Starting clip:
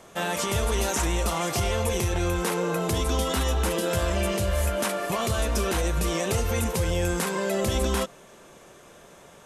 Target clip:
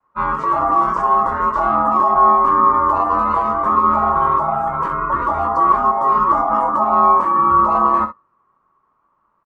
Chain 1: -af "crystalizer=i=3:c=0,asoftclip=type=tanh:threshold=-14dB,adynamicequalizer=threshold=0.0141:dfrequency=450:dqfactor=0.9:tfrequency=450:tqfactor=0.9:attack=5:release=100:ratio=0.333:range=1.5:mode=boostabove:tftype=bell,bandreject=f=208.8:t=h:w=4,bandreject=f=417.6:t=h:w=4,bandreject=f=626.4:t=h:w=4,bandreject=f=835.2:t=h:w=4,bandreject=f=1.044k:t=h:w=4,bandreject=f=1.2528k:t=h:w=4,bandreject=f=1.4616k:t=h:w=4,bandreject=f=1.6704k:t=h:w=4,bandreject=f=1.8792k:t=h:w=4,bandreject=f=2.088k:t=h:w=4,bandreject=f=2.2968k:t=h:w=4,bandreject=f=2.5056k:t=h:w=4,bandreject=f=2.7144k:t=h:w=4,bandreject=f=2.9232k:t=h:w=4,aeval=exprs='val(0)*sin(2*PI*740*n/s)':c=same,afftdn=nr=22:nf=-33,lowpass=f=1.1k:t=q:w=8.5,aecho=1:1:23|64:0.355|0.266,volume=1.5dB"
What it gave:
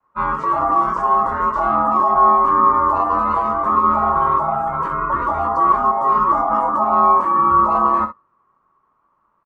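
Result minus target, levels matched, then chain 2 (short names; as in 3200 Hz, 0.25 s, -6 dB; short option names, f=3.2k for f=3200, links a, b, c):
soft clip: distortion +14 dB
-af "crystalizer=i=3:c=0,asoftclip=type=tanh:threshold=-5dB,adynamicequalizer=threshold=0.0141:dfrequency=450:dqfactor=0.9:tfrequency=450:tqfactor=0.9:attack=5:release=100:ratio=0.333:range=1.5:mode=boostabove:tftype=bell,bandreject=f=208.8:t=h:w=4,bandreject=f=417.6:t=h:w=4,bandreject=f=626.4:t=h:w=4,bandreject=f=835.2:t=h:w=4,bandreject=f=1.044k:t=h:w=4,bandreject=f=1.2528k:t=h:w=4,bandreject=f=1.4616k:t=h:w=4,bandreject=f=1.6704k:t=h:w=4,bandreject=f=1.8792k:t=h:w=4,bandreject=f=2.088k:t=h:w=4,bandreject=f=2.2968k:t=h:w=4,bandreject=f=2.5056k:t=h:w=4,bandreject=f=2.7144k:t=h:w=4,bandreject=f=2.9232k:t=h:w=4,aeval=exprs='val(0)*sin(2*PI*740*n/s)':c=same,afftdn=nr=22:nf=-33,lowpass=f=1.1k:t=q:w=8.5,aecho=1:1:23|64:0.355|0.266,volume=1.5dB"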